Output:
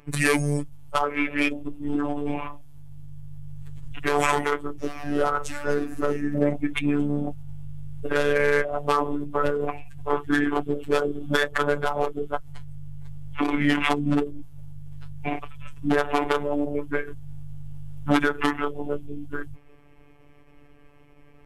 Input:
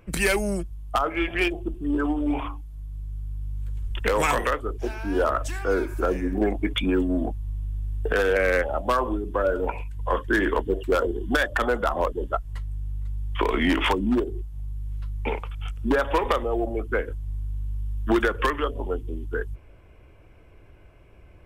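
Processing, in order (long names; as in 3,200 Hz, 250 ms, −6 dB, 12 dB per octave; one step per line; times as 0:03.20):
phase-vocoder pitch shift with formants kept −4.5 semitones
phases set to zero 145 Hz
level +3 dB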